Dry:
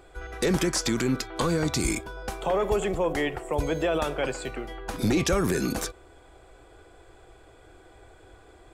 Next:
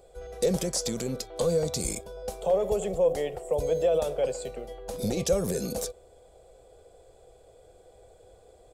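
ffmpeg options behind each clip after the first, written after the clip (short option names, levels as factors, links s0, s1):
-af "firequalizer=gain_entry='entry(130,0);entry(190,4);entry(310,-8);entry(490,12);entry(950,-5);entry(1500,-10);entry(2700,-4);entry(4000,2);entry(7900,6)':delay=0.05:min_phase=1,volume=0.501"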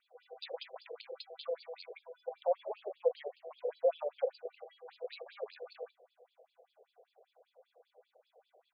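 -af "afftfilt=real='re*between(b*sr/1024,540*pow(3600/540,0.5+0.5*sin(2*PI*5.1*pts/sr))/1.41,540*pow(3600/540,0.5+0.5*sin(2*PI*5.1*pts/sr))*1.41)':imag='im*between(b*sr/1024,540*pow(3600/540,0.5+0.5*sin(2*PI*5.1*pts/sr))/1.41,540*pow(3600/540,0.5+0.5*sin(2*PI*5.1*pts/sr))*1.41)':win_size=1024:overlap=0.75,volume=0.668"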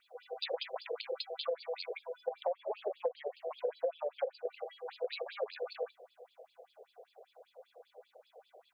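-af "acompressor=threshold=0.0112:ratio=12,volume=2.51"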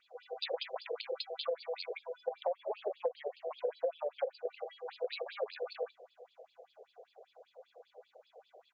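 -af "aresample=16000,aresample=44100"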